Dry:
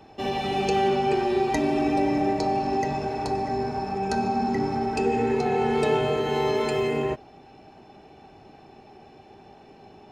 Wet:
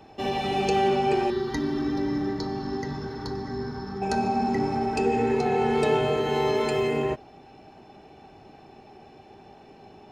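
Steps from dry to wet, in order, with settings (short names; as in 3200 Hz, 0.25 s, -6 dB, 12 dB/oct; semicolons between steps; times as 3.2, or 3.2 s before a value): 1.3–4.02 fixed phaser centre 2500 Hz, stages 6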